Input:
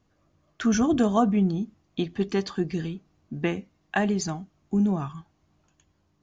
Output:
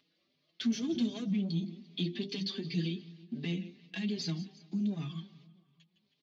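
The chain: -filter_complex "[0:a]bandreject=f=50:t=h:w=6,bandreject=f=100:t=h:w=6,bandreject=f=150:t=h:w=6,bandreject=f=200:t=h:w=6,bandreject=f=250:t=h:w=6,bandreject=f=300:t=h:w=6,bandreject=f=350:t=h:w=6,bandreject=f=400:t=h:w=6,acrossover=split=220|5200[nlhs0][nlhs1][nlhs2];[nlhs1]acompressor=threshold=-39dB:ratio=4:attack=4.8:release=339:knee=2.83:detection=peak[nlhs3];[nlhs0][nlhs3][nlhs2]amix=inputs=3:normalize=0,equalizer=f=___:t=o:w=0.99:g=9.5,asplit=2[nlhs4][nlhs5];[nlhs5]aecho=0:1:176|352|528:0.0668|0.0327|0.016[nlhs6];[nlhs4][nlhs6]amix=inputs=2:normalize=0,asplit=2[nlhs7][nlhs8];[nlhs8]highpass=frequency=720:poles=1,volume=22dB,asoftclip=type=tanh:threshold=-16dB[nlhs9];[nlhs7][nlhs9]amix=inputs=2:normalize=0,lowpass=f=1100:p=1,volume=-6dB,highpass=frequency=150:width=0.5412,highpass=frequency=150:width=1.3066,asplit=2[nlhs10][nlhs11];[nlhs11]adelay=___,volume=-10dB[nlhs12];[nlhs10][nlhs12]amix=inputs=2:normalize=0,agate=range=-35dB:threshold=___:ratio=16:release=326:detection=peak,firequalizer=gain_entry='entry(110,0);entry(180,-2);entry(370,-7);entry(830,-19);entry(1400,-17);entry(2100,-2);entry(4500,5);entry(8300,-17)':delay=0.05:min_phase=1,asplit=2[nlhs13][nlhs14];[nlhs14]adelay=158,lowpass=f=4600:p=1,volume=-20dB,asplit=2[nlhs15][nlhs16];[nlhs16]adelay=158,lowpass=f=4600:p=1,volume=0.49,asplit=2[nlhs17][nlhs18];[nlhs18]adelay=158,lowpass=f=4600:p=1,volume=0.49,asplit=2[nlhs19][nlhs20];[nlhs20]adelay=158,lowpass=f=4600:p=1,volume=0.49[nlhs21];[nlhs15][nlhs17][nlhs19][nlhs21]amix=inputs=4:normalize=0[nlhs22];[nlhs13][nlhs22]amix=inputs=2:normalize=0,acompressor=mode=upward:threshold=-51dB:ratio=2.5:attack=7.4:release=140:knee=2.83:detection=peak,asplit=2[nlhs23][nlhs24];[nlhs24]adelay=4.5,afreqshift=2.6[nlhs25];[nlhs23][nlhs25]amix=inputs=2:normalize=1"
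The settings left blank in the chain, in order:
3800, 12, -51dB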